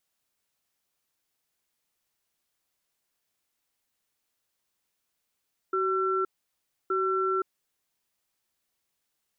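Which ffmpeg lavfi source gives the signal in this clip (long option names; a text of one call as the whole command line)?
ffmpeg -f lavfi -i "aevalsrc='0.0473*(sin(2*PI*378*t)+sin(2*PI*1350*t))*clip(min(mod(t,1.17),0.52-mod(t,1.17))/0.005,0,1)':duration=2.32:sample_rate=44100" out.wav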